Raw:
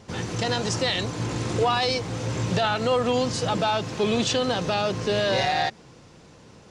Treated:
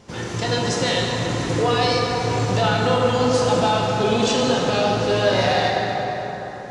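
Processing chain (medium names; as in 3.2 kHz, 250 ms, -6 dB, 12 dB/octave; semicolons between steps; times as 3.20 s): plate-style reverb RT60 4.5 s, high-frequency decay 0.5×, DRR -3 dB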